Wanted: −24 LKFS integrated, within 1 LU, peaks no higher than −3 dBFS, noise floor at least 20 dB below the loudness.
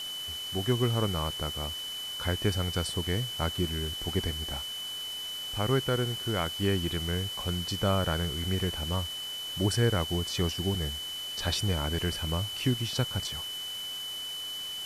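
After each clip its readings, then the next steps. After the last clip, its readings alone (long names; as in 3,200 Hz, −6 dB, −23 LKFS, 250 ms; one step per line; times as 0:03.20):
interfering tone 3,000 Hz; level of the tone −35 dBFS; background noise floor −37 dBFS; target noise floor −51 dBFS; integrated loudness −30.5 LKFS; sample peak −14.0 dBFS; target loudness −24.0 LKFS
→ notch filter 3,000 Hz, Q 30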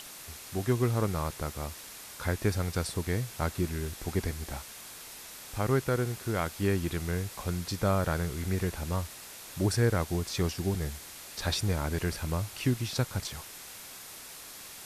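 interfering tone none found; background noise floor −46 dBFS; target noise floor −52 dBFS
→ broadband denoise 6 dB, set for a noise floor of −46 dBFS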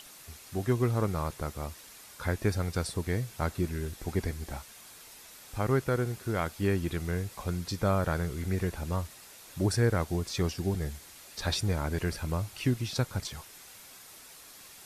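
background noise floor −51 dBFS; target noise floor −52 dBFS
→ broadband denoise 6 dB, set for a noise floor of −51 dBFS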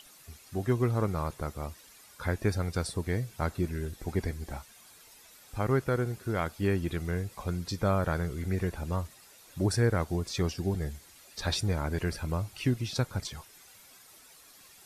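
background noise floor −56 dBFS; integrated loudness −32.0 LKFS; sample peak −15.0 dBFS; target loudness −24.0 LKFS
→ level +8 dB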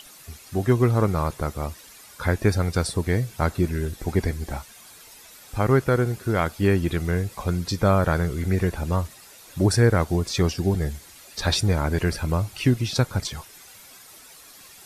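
integrated loudness −24.0 LKFS; sample peak −7.0 dBFS; background noise floor −48 dBFS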